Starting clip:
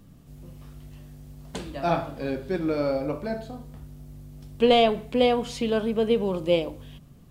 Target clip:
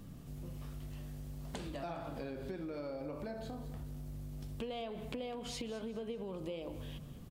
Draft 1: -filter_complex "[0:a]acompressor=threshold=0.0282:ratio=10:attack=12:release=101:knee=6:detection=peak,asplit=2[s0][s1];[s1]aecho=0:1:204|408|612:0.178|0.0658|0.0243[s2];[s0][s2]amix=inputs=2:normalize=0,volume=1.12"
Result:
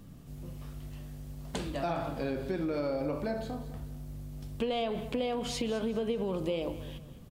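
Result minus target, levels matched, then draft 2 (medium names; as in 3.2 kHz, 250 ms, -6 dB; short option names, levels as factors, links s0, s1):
compression: peak gain reduction -10 dB
-filter_complex "[0:a]acompressor=threshold=0.00794:ratio=10:attack=12:release=101:knee=6:detection=peak,asplit=2[s0][s1];[s1]aecho=0:1:204|408|612:0.178|0.0658|0.0243[s2];[s0][s2]amix=inputs=2:normalize=0,volume=1.12"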